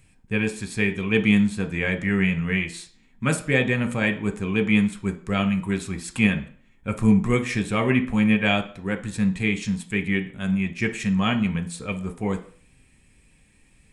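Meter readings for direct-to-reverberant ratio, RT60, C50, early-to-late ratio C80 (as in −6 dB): 5.5 dB, 0.50 s, 14.0 dB, 18.5 dB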